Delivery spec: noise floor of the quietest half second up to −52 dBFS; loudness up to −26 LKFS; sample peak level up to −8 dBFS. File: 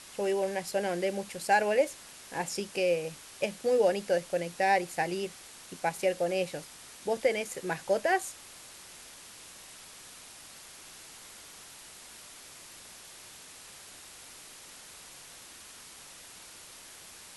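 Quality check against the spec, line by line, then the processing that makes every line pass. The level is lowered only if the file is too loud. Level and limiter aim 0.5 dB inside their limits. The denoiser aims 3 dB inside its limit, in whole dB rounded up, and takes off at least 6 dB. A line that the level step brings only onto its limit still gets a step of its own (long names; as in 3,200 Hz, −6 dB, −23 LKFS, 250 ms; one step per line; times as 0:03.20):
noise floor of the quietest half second −50 dBFS: out of spec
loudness −30.5 LKFS: in spec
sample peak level −13.5 dBFS: in spec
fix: broadband denoise 6 dB, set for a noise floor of −50 dBFS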